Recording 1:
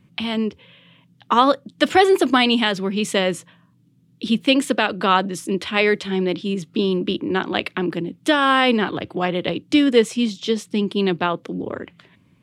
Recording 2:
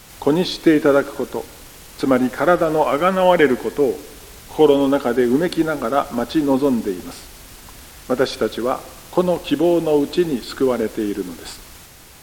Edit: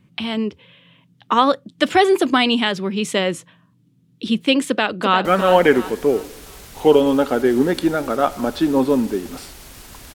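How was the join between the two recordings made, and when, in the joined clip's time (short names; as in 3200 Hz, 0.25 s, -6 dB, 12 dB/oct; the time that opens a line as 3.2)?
recording 1
4.67–5.25 echo throw 0.35 s, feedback 35%, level -8 dB
5.25 switch to recording 2 from 2.99 s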